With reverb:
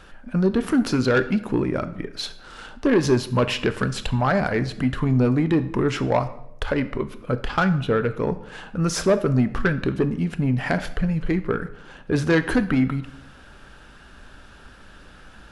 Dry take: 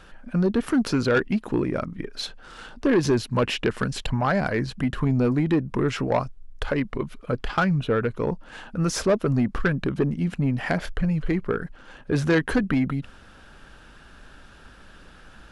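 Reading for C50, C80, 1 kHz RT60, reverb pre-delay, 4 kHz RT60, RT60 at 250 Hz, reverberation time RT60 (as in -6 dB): 14.0 dB, 17.0 dB, 0.70 s, 6 ms, 0.60 s, 0.95 s, 0.80 s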